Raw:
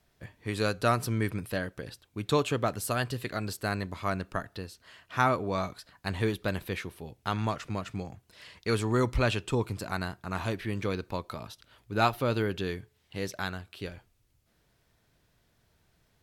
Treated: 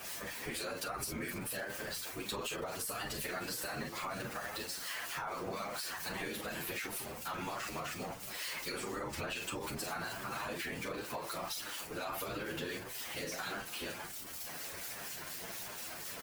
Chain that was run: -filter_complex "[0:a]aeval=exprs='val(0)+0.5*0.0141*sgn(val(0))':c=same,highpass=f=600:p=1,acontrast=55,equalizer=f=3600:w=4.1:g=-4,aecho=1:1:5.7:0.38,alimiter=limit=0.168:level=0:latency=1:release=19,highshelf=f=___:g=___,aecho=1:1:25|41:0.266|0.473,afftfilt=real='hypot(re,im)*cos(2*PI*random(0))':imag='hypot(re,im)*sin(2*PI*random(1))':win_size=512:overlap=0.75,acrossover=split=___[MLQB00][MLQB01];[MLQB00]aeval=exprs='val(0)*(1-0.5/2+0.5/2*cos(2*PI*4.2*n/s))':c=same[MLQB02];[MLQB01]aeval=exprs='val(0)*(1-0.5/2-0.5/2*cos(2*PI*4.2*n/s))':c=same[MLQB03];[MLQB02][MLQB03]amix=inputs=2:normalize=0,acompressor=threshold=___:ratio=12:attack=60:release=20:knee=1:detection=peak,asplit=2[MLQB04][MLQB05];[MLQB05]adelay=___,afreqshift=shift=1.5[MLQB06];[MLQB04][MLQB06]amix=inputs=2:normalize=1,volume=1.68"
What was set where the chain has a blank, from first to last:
9100, 3.5, 2400, 0.00447, 8.9